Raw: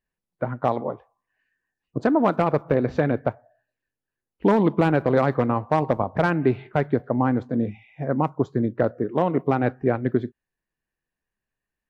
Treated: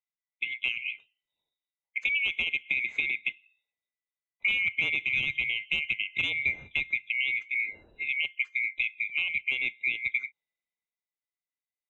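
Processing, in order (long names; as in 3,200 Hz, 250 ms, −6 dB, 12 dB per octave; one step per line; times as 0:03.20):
neighbouring bands swapped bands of 2,000 Hz
0:04.53–0:06.70: parametric band 130 Hz +8 dB 1.3 octaves
downward compressor 2.5 to 1, threshold −25 dBFS, peak gain reduction 8 dB
high-shelf EQ 3,300 Hz −7 dB
multiband upward and downward expander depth 40%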